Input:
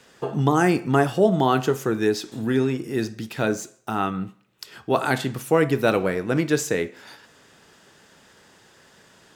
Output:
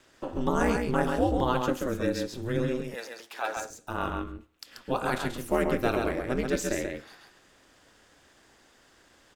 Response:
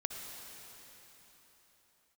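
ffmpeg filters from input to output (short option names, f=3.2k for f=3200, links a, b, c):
-filter_complex "[0:a]aeval=exprs='val(0)*sin(2*PI*120*n/s)':c=same,asettb=1/sr,asplit=3[a][b][c];[a]atrim=end=2.824[d];[b]atrim=start=2.82:end=3.57,asetpts=PTS-STARTPTS,afade=t=in:d=0.004:c=qsin,afade=t=out:st=0.746:d=0.004:c=qsin,highpass=f=810:t=q:w=2[e];[c]atrim=start=3.566[f];[d][e]acrossfade=d=0.004:c1=hsin:c2=qsin[g];[g][f]acrossfade=d=0.004:c1=qsin:c2=hsin,aecho=1:1:135:0.596,volume=-4.5dB"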